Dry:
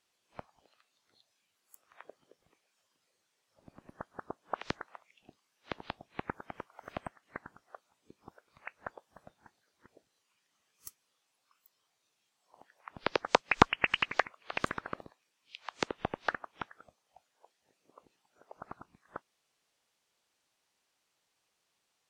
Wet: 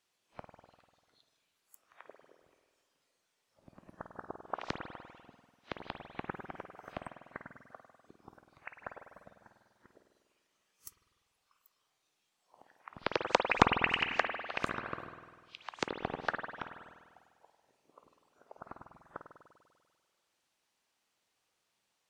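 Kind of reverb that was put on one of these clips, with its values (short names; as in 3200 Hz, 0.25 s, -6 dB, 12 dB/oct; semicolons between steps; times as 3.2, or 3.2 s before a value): spring tank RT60 1.6 s, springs 49 ms, chirp 30 ms, DRR 5 dB; gain -2 dB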